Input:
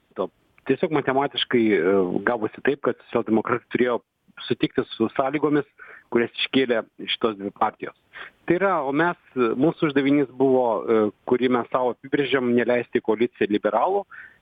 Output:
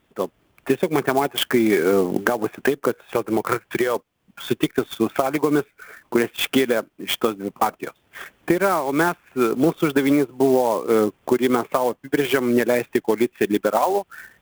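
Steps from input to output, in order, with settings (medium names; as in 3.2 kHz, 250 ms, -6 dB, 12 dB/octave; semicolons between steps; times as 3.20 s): 2.91–3.96 s: peaking EQ 250 Hz -11.5 dB 0.4 oct; sampling jitter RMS 0.027 ms; trim +1.5 dB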